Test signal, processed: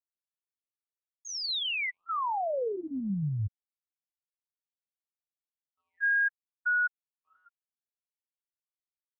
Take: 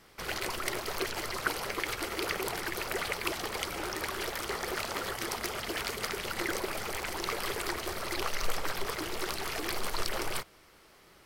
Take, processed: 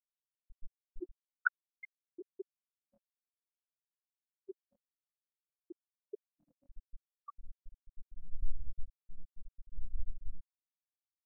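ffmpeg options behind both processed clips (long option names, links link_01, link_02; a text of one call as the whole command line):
ffmpeg -i in.wav -af "aeval=exprs='0.237*(cos(1*acos(clip(val(0)/0.237,-1,1)))-cos(1*PI/2))+0.0015*(cos(5*acos(clip(val(0)/0.237,-1,1)))-cos(5*PI/2))':channel_layout=same,afftfilt=real='re*gte(hypot(re,im),0.224)':imag='im*gte(hypot(re,im),0.224)':win_size=1024:overlap=0.75,afftfilt=real='re*(1-between(b*sr/1024,360*pow(2000/360,0.5+0.5*sin(2*PI*0.57*pts/sr))/1.41,360*pow(2000/360,0.5+0.5*sin(2*PI*0.57*pts/sr))*1.41))':imag='im*(1-between(b*sr/1024,360*pow(2000/360,0.5+0.5*sin(2*PI*0.57*pts/sr))/1.41,360*pow(2000/360,0.5+0.5*sin(2*PI*0.57*pts/sr))*1.41))':win_size=1024:overlap=0.75,volume=3dB" out.wav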